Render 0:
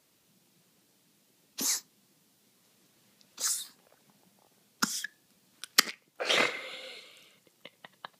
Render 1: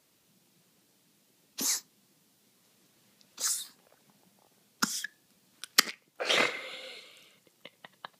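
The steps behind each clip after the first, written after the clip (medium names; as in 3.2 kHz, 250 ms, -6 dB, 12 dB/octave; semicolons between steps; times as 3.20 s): no audible change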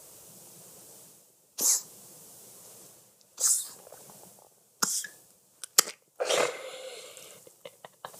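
graphic EQ 250/500/2000/4000/8000 Hz -12/+6/-9/-7/+7 dB; reverse; upward compressor, threshold -41 dBFS; reverse; trim +3 dB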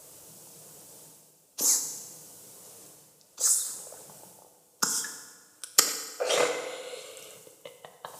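FDN reverb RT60 1.4 s, low-frequency decay 0.9×, high-frequency decay 0.8×, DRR 5 dB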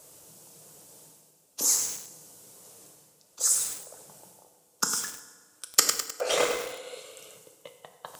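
in parallel at -11.5 dB: crossover distortion -39.5 dBFS; on the sum: bit-crushed delay 103 ms, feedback 55%, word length 5-bit, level -6 dB; trim -2 dB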